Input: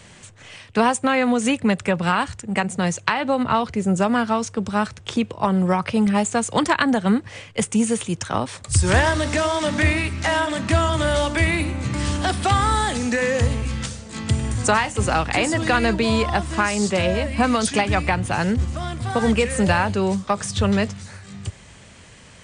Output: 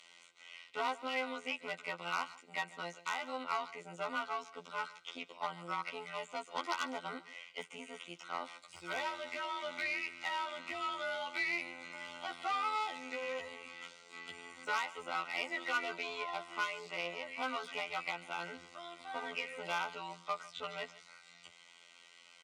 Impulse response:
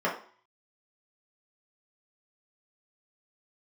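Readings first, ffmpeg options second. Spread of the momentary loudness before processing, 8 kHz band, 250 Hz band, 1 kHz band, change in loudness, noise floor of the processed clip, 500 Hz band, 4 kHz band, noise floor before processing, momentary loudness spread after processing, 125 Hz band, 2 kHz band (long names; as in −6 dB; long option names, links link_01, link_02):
7 LU, −26.0 dB, −30.5 dB, −16.0 dB, −18.5 dB, −61 dBFS, −21.0 dB, −15.0 dB, −46 dBFS, 13 LU, −38.5 dB, −14.5 dB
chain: -filter_complex "[0:a]afftfilt=real='hypot(re,im)*cos(PI*b)':imag='0':win_size=2048:overlap=0.75,aeval=exprs='1*(cos(1*acos(clip(val(0)/1,-1,1)))-cos(1*PI/2))+0.282*(cos(2*acos(clip(val(0)/1,-1,1)))-cos(2*PI/2))+0.251*(cos(4*acos(clip(val(0)/1,-1,1)))-cos(4*PI/2))+0.1*(cos(5*acos(clip(val(0)/1,-1,1)))-cos(5*PI/2))+0.0794*(cos(6*acos(clip(val(0)/1,-1,1)))-cos(6*PI/2))':channel_layout=same,acrossover=split=2600[link_01][link_02];[link_02]acompressor=threshold=-43dB:ratio=4:attack=1:release=60[link_03];[link_01][link_03]amix=inputs=2:normalize=0,acrossover=split=180 4500:gain=0.0891 1 0.0631[link_04][link_05][link_06];[link_04][link_05][link_06]amix=inputs=3:normalize=0,aeval=exprs='0.531*(cos(1*acos(clip(val(0)/0.531,-1,1)))-cos(1*PI/2))+0.0335*(cos(3*acos(clip(val(0)/0.531,-1,1)))-cos(3*PI/2))+0.0668*(cos(4*acos(clip(val(0)/0.531,-1,1)))-cos(4*PI/2))':channel_layout=same,asplit=2[link_07][link_08];[link_08]asoftclip=type=tanh:threshold=-21.5dB,volume=-10.5dB[link_09];[link_07][link_09]amix=inputs=2:normalize=0,asuperstop=centerf=1700:order=20:qfactor=5.7,aderivative,aecho=1:1:145:0.112,volume=2dB"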